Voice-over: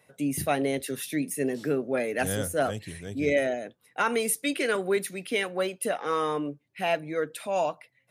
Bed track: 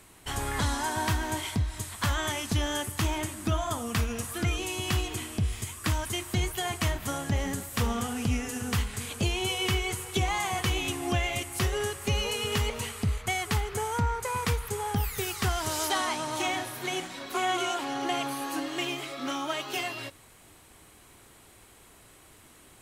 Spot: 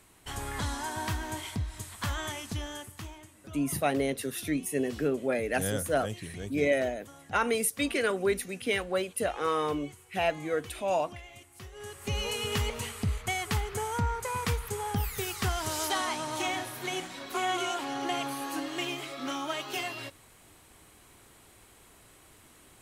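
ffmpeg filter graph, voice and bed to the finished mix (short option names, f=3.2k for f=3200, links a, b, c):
-filter_complex "[0:a]adelay=3350,volume=-1.5dB[a];[1:a]volume=12dB,afade=t=out:st=2.22:d=0.99:silence=0.199526,afade=t=in:st=11.74:d=0.55:silence=0.141254[b];[a][b]amix=inputs=2:normalize=0"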